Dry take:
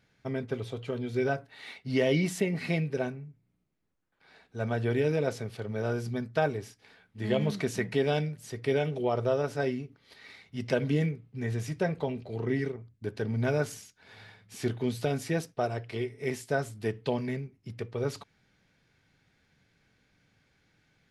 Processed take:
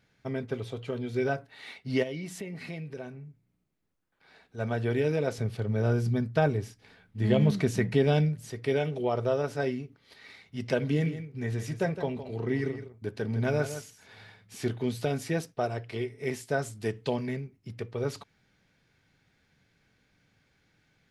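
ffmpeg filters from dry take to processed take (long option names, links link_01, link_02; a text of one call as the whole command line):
ffmpeg -i in.wav -filter_complex "[0:a]asplit=3[link_01][link_02][link_03];[link_01]afade=type=out:start_time=2.02:duration=0.02[link_04];[link_02]acompressor=threshold=-42dB:ratio=2:attack=3.2:release=140:knee=1:detection=peak,afade=type=in:start_time=2.02:duration=0.02,afade=type=out:start_time=4.57:duration=0.02[link_05];[link_03]afade=type=in:start_time=4.57:duration=0.02[link_06];[link_04][link_05][link_06]amix=inputs=3:normalize=0,asettb=1/sr,asplit=3[link_07][link_08][link_09];[link_07]atrim=end=5.384[link_10];[link_08]atrim=start=5.38:end=8.51,asetpts=PTS-STARTPTS,afade=type=in:duration=0.004:curve=qsin,afade=type=out:start_time=3.126:duration=0.004:curve=qsin,lowshelf=frequency=220:gain=10.5[link_11];[link_09]atrim=start=8.506[link_12];[link_10][link_11]acrossfade=duration=0.004:curve1=hsin:curve2=qsin[link_13];[link_13][link_12]acrossfade=duration=0.004:curve1=qsin:curve2=hsin,asettb=1/sr,asplit=3[link_14][link_15][link_16];[link_14]atrim=end=10.814[link_17];[link_15]atrim=start=10.81:end=14.22,asetpts=PTS-STARTPTS,afade=type=in:duration=0.004:curve=qsin,afade=type=out:start_time=3.406:duration=0.004:curve=qsin,aecho=1:1:162:0.282,atrim=end_sample=150381[link_18];[link_16]atrim=start=14.216[link_19];[link_17][link_18]acrossfade=duration=0.004:curve1=hsin:curve2=qsin[link_20];[link_20][link_19]acrossfade=duration=0.004:curve1=qsin:curve2=hsin,asettb=1/sr,asplit=3[link_21][link_22][link_23];[link_21]atrim=end=16.624[link_24];[link_22]atrim=start=16.62:end=17.16,asetpts=PTS-STARTPTS,afade=type=in:duration=0.004:curve=qsin,afade=type=out:start_time=0.536:duration=0.004:curve=qsin,equalizer=frequency=7300:width_type=o:width=1.2:gain=6[link_25];[link_23]atrim=start=17.156[link_26];[link_24][link_25]acrossfade=duration=0.004:curve1=hsin:curve2=qsin[link_27];[link_27][link_26]acrossfade=duration=0.004:curve1=qsin:curve2=hsin" out.wav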